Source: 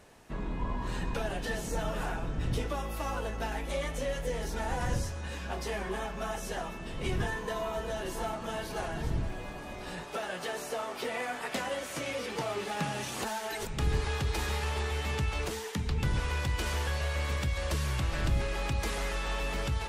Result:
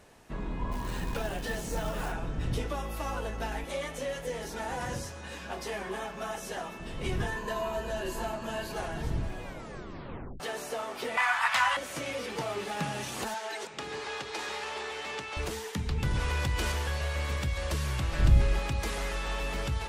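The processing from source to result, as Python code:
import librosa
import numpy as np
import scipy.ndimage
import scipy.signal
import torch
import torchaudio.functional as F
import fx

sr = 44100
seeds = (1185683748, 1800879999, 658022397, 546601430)

y = fx.quant_float(x, sr, bits=2, at=(0.71, 2.11), fade=0.02)
y = fx.highpass(y, sr, hz=180.0, slope=6, at=(3.64, 6.8))
y = fx.ripple_eq(y, sr, per_octave=1.4, db=7, at=(7.36, 8.73))
y = fx.curve_eq(y, sr, hz=(110.0, 350.0, 1000.0, 12000.0), db=(0, -28, 15, 1), at=(11.17, 11.77))
y = fx.bandpass_edges(y, sr, low_hz=370.0, high_hz=7600.0, at=(13.34, 15.37))
y = fx.env_flatten(y, sr, amount_pct=50, at=(16.11, 16.72))
y = fx.low_shelf(y, sr, hz=180.0, db=9.5, at=(18.19, 18.59))
y = fx.edit(y, sr, fx.tape_stop(start_s=9.43, length_s=0.97), tone=tone)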